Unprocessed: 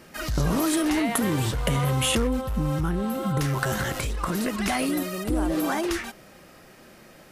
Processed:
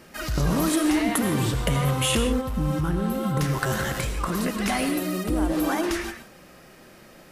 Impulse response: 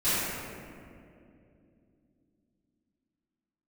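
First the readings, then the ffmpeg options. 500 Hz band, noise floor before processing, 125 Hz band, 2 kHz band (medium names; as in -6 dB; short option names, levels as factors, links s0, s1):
+1.0 dB, -50 dBFS, +1.0 dB, +0.5 dB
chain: -filter_complex "[0:a]asplit=2[s0][s1];[1:a]atrim=start_sample=2205,atrim=end_sample=4410,adelay=79[s2];[s1][s2]afir=irnorm=-1:irlink=0,volume=0.133[s3];[s0][s3]amix=inputs=2:normalize=0"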